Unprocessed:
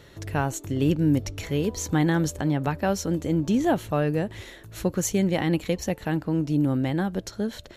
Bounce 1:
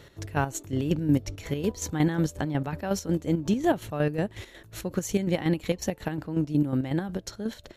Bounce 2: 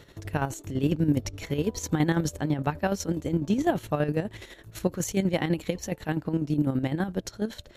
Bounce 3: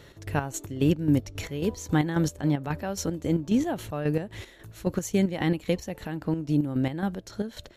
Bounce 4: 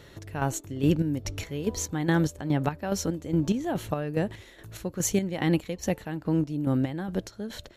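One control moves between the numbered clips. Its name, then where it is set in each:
square tremolo, rate: 5.5 Hz, 12 Hz, 3.7 Hz, 2.4 Hz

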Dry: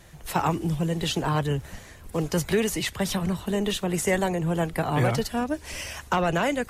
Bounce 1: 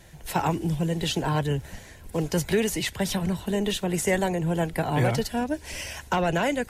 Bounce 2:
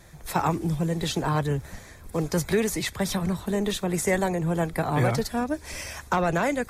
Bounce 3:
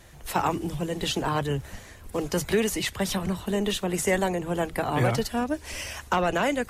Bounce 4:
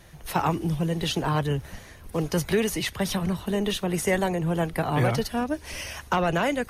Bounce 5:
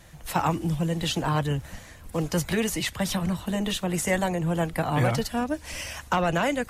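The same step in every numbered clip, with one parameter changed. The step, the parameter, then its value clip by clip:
band-stop, frequency: 1.2 kHz, 2.9 kHz, 160 Hz, 7.5 kHz, 400 Hz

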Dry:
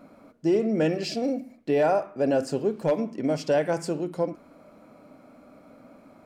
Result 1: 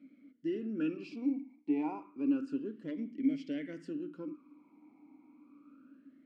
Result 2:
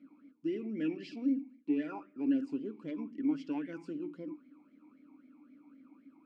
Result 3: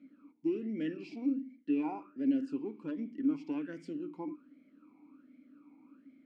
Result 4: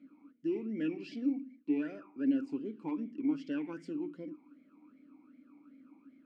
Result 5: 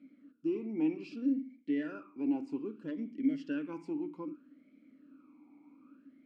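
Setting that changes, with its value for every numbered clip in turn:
talking filter, rate: 0.3 Hz, 3.8 Hz, 1.3 Hz, 2.6 Hz, 0.63 Hz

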